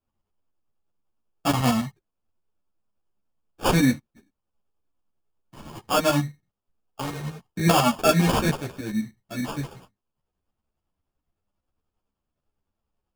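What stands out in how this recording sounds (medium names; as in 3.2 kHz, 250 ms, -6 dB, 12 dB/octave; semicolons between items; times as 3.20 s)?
tremolo saw up 10 Hz, depth 60%; aliases and images of a low sample rate 2 kHz, jitter 0%; a shimmering, thickened sound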